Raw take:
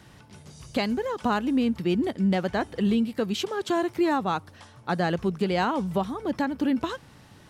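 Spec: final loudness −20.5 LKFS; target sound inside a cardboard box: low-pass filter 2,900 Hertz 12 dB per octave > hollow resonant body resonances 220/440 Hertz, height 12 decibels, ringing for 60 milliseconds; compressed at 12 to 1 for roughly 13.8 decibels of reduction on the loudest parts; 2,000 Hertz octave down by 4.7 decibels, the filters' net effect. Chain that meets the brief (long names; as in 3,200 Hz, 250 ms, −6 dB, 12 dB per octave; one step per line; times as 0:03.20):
parametric band 2,000 Hz −5.5 dB
downward compressor 12 to 1, threshold −34 dBFS
low-pass filter 2,900 Hz 12 dB per octave
hollow resonant body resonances 220/440 Hz, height 12 dB, ringing for 60 ms
level +12 dB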